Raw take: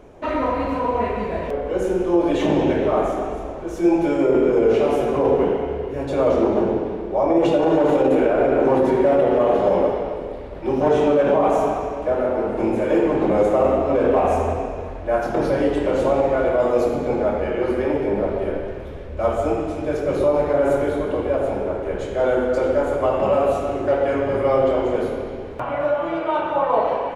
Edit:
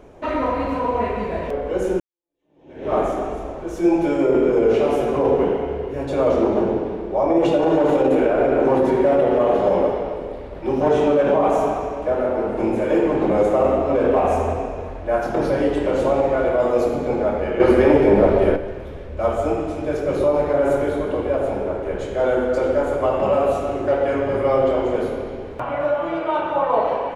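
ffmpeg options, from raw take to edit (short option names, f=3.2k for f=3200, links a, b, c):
-filter_complex "[0:a]asplit=4[a][b][c][d];[a]atrim=end=2,asetpts=PTS-STARTPTS,afade=t=out:st=1.996:d=0.004:c=hsin[e];[b]atrim=start=2:end=17.602,asetpts=PTS-STARTPTS,afade=t=in:d=0.93:c=exp[f];[c]atrim=start=17.598:end=18.562,asetpts=PTS-STARTPTS,volume=7.5dB[g];[d]atrim=start=18.558[h];[e][f]concat=n=2:v=0:a=1[i];[i][g]acrossfade=d=0.004:c1=hsin:c2=hsin[j];[j][h]acrossfade=d=0.004:c1=hsin:c2=hsin"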